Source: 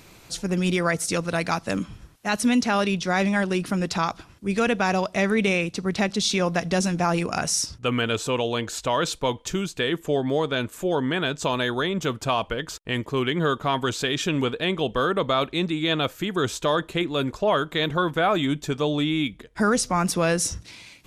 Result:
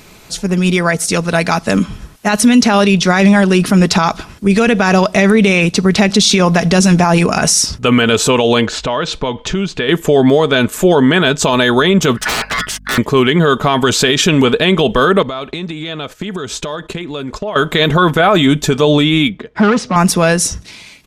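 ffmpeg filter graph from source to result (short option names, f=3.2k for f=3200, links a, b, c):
-filter_complex "[0:a]asettb=1/sr,asplit=3[a][b][c];[a]atrim=end=8.664[d];[b]atrim=start=8.66:end=9.89,asetpts=PTS-STARTPTS,afade=t=in:d=0.004:c=qsin,afade=t=out:st=1.226:d=0.004:c=qsin,lowpass=4k,acompressor=threshold=-34dB:ratio=3:attack=3.2:release=140:knee=1:detection=peak[e];[c]atrim=start=9.886[f];[d][e]acrossfade=d=0.004:c1=hsin:c2=qsin[g];[g][f]acrossfade=d=0.004:c1=qsin:c2=hsin,asettb=1/sr,asplit=3[h][i][j];[h]atrim=end=12.174[k];[i]atrim=start=12.17:end=12.98,asetpts=PTS-STARTPTS,afade=t=in:d=0.004:c=qsin,afade=t=out:st=0.806:d=0.004:c=qsin,aeval=exprs='0.0531*(abs(mod(val(0)/0.0531+3,4)-2)-1)':c=same,aeval=exprs='val(0)*sin(2*PI*1600*n/s)':c=same,aeval=exprs='val(0)+0.002*(sin(2*PI*50*n/s)+sin(2*PI*2*50*n/s)/2+sin(2*PI*3*50*n/s)/3+sin(2*PI*4*50*n/s)/4+sin(2*PI*5*50*n/s)/5)':c=same[l];[j]atrim=start=12.976[m];[k][l]acrossfade=d=0.004:c1=hsin:c2=qsin[n];[n][m]acrossfade=d=0.004:c1=qsin:c2=hsin,asettb=1/sr,asplit=3[o][p][q];[o]atrim=end=15.224[r];[p]atrim=start=15.22:end=17.56,asetpts=PTS-STARTPTS,afade=t=in:d=0.004:c=qsin,afade=t=out:st=2.336:d=0.004:c=qsin,agate=range=-16dB:threshold=-41dB:ratio=16:release=100:detection=peak,lowpass=8.8k,acompressor=threshold=-36dB:ratio=16:attack=3.2:release=140:knee=1:detection=peak[s];[q]atrim=start=17.556[t];[r][s]acrossfade=d=0.004:c1=hsin:c2=qsin[u];[u][t]acrossfade=d=0.004:c1=qsin:c2=hsin,asettb=1/sr,asplit=3[v][w][x];[v]atrim=end=19.294[y];[w]atrim=start=19.29:end=19.96,asetpts=PTS-STARTPTS,afade=t=in:d=0.004:c=qsin,afade=t=out:st=0.666:d=0.004:c=qsin,volume=22.5dB,asoftclip=hard,volume=-22.5dB,highpass=100,lowpass=6.8k,aemphasis=mode=reproduction:type=75kf[z];[x]atrim=start=19.956[aa];[y][z]acrossfade=d=0.004:c1=hsin:c2=qsin[ab];[ab][aa]acrossfade=d=0.004:c1=qsin:c2=hsin,aecho=1:1:4.7:0.31,dynaudnorm=f=150:g=21:m=11.5dB,alimiter=level_in=9.5dB:limit=-1dB:release=50:level=0:latency=1,volume=-1dB"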